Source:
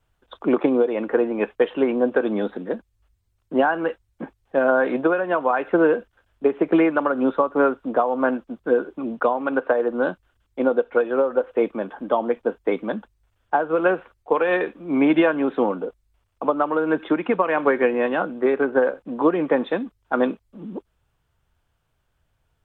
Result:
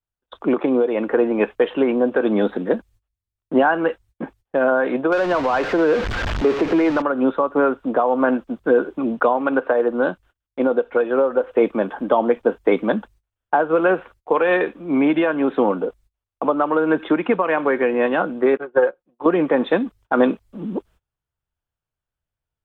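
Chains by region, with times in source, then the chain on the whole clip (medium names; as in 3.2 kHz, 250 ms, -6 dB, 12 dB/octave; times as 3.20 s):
5.12–7.02 s: jump at every zero crossing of -21 dBFS + distance through air 170 m
18.57–19.26 s: band-stop 190 Hz, Q 5.2 + comb 5.6 ms, depth 66% + upward expansion 2.5:1, over -33 dBFS
whole clip: peak limiter -11.5 dBFS; gain riding within 3 dB 0.5 s; gate -50 dBFS, range -24 dB; trim +4 dB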